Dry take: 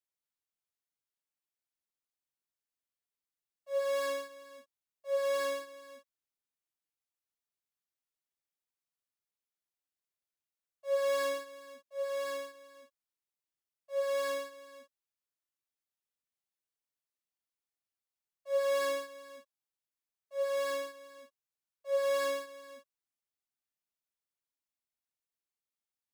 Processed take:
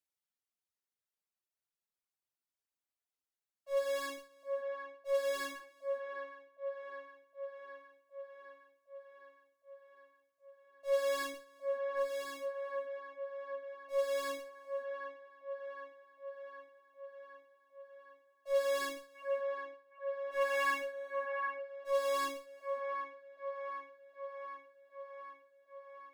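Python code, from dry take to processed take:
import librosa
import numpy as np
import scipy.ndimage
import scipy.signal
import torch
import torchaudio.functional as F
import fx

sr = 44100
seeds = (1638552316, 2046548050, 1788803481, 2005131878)

p1 = fx.cheby_harmonics(x, sr, harmonics=(6,), levels_db=(-26,), full_scale_db=-22.5)
p2 = fx.spec_box(p1, sr, start_s=19.15, length_s=2.08, low_hz=700.0, high_hz=2800.0, gain_db=11)
p3 = fx.dereverb_blind(p2, sr, rt60_s=2.0)
y = p3 + fx.echo_wet_bandpass(p3, sr, ms=763, feedback_pct=66, hz=900.0, wet_db=-3.5, dry=0)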